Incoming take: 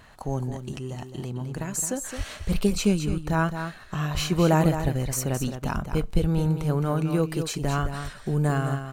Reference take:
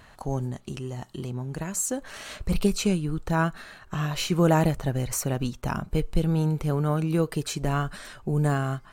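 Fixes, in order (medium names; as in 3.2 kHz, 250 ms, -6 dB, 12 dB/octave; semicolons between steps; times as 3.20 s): de-click; de-plosive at 2.17/3.07/4.13/4.82/5.74/6.20/7.81 s; inverse comb 215 ms -8.5 dB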